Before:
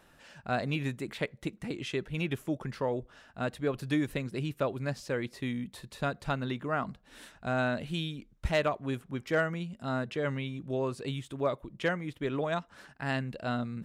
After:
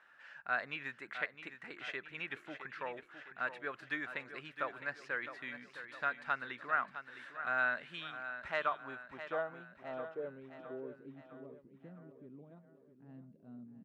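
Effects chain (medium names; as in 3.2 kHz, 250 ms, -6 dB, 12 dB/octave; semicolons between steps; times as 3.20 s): low-pass sweep 1.6 kHz -> 210 Hz, 8.34–11.55 s; differentiator; feedback delay 660 ms, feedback 49%, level -11 dB; trim +9 dB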